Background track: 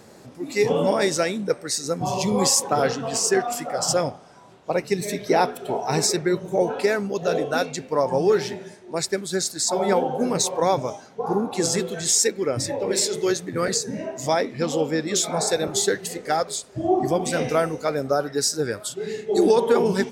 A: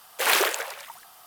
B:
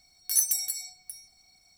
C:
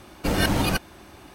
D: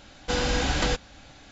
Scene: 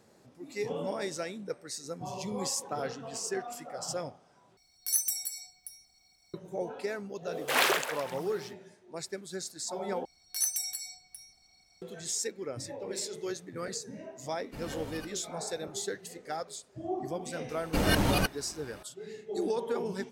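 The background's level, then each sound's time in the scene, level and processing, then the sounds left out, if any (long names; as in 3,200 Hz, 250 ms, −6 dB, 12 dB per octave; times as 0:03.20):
background track −14 dB
0:04.57: overwrite with B −4.5 dB
0:07.29: mix in A −3.5 dB, fades 0.10 s + high-shelf EQ 6,900 Hz −6.5 dB
0:10.05: overwrite with B −1 dB + high-shelf EQ 10,000 Hz −11.5 dB
0:14.28: mix in C −14 dB + tuned comb filter 55 Hz, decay 0.63 s, mix 70%
0:17.49: mix in C −4 dB
not used: D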